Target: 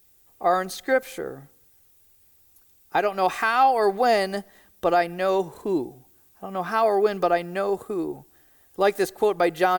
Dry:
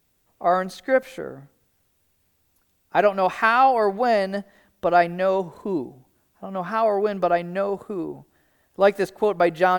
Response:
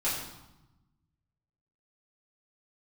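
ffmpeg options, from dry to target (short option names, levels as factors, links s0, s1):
-af "highshelf=f=5500:g=11.5,aecho=1:1:2.5:0.31,alimiter=limit=0.335:level=0:latency=1:release=325"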